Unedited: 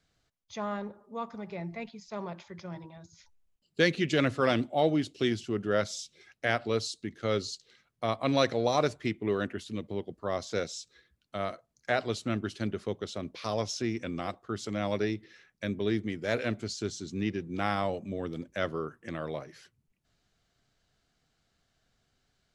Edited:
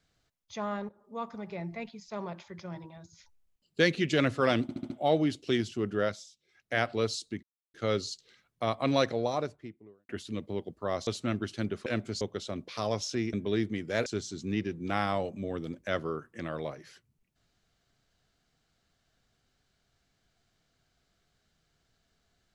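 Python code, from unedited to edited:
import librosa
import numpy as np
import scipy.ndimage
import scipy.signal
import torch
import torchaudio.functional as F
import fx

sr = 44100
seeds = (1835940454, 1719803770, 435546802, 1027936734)

y = fx.studio_fade_out(x, sr, start_s=8.22, length_s=1.28)
y = fx.edit(y, sr, fx.fade_in_from(start_s=0.89, length_s=0.4, curve='qsin', floor_db=-15.0),
    fx.stutter(start_s=4.62, slice_s=0.07, count=5),
    fx.fade_down_up(start_s=5.69, length_s=0.82, db=-15.0, fade_s=0.3),
    fx.insert_silence(at_s=7.15, length_s=0.31),
    fx.cut(start_s=10.48, length_s=1.61),
    fx.cut(start_s=14.0, length_s=1.67),
    fx.move(start_s=16.4, length_s=0.35, to_s=12.88), tone=tone)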